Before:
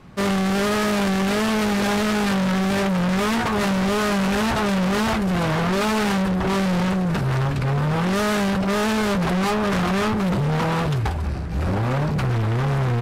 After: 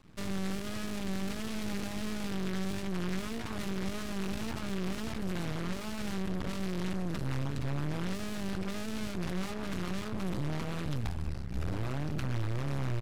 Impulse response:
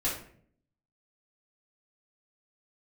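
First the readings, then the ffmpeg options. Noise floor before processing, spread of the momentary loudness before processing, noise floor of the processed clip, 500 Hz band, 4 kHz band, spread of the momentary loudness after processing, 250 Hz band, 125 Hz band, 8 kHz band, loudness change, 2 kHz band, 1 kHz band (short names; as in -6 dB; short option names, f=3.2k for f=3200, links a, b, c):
-23 dBFS, 2 LU, -38 dBFS, -17.0 dB, -14.5 dB, 2 LU, -14.5 dB, -13.5 dB, -13.5 dB, -15.0 dB, -17.5 dB, -20.0 dB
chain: -filter_complex "[0:a]equalizer=f=690:w=0.41:g=-9,aresample=32000,aresample=44100,acrossover=split=320[a][b];[b]acompressor=threshold=-30dB:ratio=6[c];[a][c]amix=inputs=2:normalize=0,aeval=exprs='max(val(0),0)':c=same,volume=-5dB"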